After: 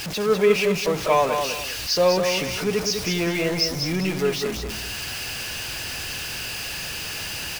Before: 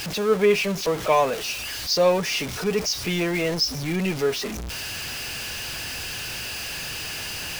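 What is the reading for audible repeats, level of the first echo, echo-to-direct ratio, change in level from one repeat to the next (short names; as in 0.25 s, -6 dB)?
2, -6.0 dB, -5.5 dB, -11.0 dB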